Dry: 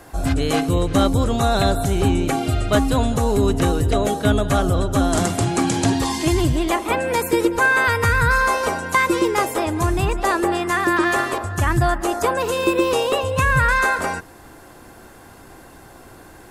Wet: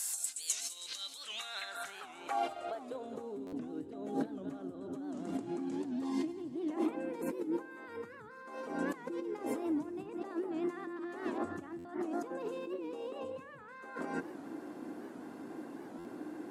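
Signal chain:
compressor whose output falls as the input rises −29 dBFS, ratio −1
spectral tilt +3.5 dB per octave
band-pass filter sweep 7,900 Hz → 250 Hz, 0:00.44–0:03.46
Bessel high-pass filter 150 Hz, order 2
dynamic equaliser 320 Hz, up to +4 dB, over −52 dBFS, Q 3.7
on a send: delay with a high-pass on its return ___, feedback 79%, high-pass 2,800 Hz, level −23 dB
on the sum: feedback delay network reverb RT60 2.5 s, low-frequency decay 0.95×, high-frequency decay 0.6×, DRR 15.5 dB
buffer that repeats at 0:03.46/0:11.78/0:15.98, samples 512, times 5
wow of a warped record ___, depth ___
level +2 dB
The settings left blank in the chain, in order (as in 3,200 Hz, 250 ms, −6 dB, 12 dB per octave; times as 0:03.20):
162 ms, 78 rpm, 160 cents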